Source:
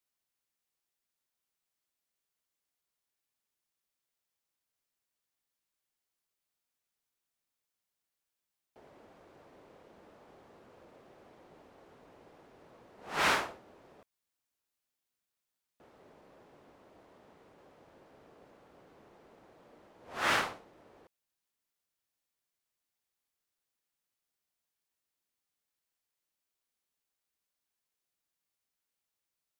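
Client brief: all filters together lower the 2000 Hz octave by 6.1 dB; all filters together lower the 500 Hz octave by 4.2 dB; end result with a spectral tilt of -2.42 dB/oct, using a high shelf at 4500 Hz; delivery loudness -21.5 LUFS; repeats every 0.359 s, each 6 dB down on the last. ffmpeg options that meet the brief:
-af "equalizer=f=500:t=o:g=-5,equalizer=f=2k:t=o:g=-7,highshelf=f=4.5k:g=-4,aecho=1:1:359|718|1077|1436|1795|2154:0.501|0.251|0.125|0.0626|0.0313|0.0157,volume=17dB"

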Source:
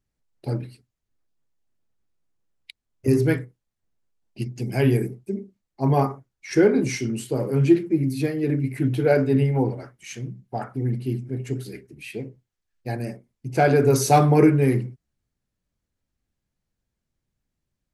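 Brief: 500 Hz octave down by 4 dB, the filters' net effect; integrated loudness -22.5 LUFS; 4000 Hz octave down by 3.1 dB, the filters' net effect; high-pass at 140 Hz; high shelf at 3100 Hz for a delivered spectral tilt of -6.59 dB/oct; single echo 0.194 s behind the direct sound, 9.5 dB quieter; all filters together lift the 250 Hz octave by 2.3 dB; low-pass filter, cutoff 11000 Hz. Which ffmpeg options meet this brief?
-af "highpass=140,lowpass=11k,equalizer=f=250:t=o:g=6.5,equalizer=f=500:t=o:g=-8,highshelf=f=3.1k:g=3,equalizer=f=4k:t=o:g=-7,aecho=1:1:194:0.335,volume=-0.5dB"

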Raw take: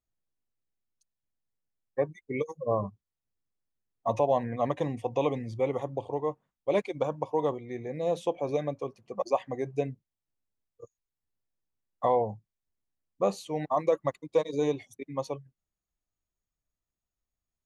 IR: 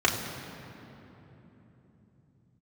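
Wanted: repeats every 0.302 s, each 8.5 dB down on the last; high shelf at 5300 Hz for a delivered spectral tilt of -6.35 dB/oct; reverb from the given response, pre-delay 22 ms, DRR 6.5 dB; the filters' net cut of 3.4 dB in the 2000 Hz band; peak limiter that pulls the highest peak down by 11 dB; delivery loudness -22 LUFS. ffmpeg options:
-filter_complex "[0:a]equalizer=f=2k:t=o:g=-5,highshelf=f=5.3k:g=6.5,alimiter=level_in=0.5dB:limit=-24dB:level=0:latency=1,volume=-0.5dB,aecho=1:1:302|604|906|1208:0.376|0.143|0.0543|0.0206,asplit=2[a][b];[1:a]atrim=start_sample=2205,adelay=22[c];[b][c]afir=irnorm=-1:irlink=0,volume=-21.5dB[d];[a][d]amix=inputs=2:normalize=0,volume=13.5dB"

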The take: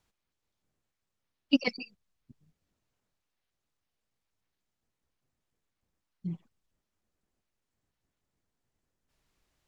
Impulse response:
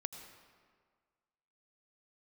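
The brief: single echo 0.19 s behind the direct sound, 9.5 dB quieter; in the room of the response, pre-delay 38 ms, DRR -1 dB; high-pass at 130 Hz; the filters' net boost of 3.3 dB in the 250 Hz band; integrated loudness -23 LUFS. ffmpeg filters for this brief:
-filter_complex "[0:a]highpass=130,equalizer=f=250:t=o:g=4,aecho=1:1:190:0.335,asplit=2[a][b];[1:a]atrim=start_sample=2205,adelay=38[c];[b][c]afir=irnorm=-1:irlink=0,volume=2.5dB[d];[a][d]amix=inputs=2:normalize=0,volume=4.5dB"

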